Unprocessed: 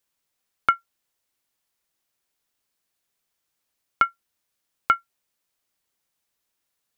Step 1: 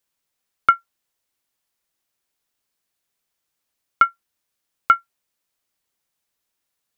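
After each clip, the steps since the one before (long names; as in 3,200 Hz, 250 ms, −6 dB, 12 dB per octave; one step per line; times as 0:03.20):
dynamic equaliser 1,200 Hz, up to +6 dB, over −32 dBFS, Q 1.3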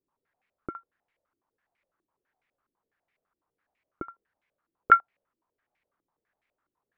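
brickwall limiter −5.5 dBFS, peak gain reduction 4 dB
low-pass on a step sequencer 12 Hz 340–2,200 Hz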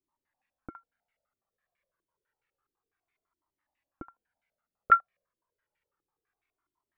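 flanger whose copies keep moving one way falling 0.29 Hz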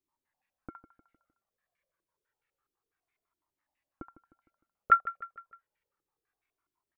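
repeating echo 153 ms, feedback 48%, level −15.5 dB
level −1.5 dB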